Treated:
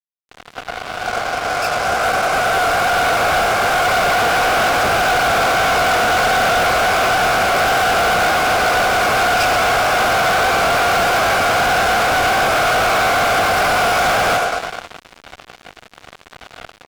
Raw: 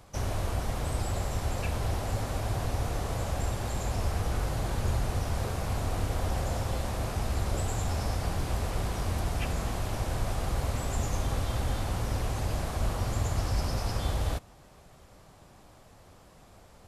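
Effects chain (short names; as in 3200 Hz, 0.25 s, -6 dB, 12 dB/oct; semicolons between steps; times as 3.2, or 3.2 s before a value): opening faded in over 4.55 s; vowel filter a; on a send: thinning echo 0.105 s, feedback 70%, high-pass 340 Hz, level -8.5 dB; on the sum: harmoniser -7 st -12 dB, +12 st -2 dB; fuzz box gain 51 dB, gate -58 dBFS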